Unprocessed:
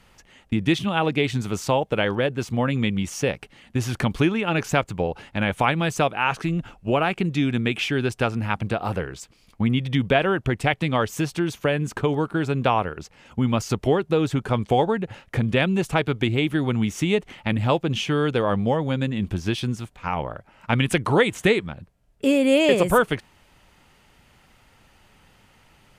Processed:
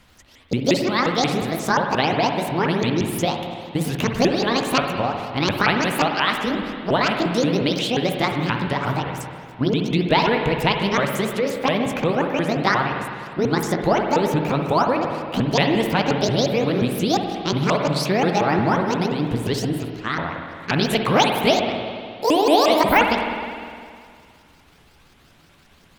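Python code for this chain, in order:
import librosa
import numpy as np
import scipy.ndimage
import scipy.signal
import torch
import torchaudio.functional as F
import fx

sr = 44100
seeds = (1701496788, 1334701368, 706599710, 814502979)

y = fx.pitch_ramps(x, sr, semitones=11.5, every_ms=177)
y = fx.rev_spring(y, sr, rt60_s=2.2, pass_ms=(51, 58), chirp_ms=50, drr_db=3.5)
y = y * librosa.db_to_amplitude(2.0)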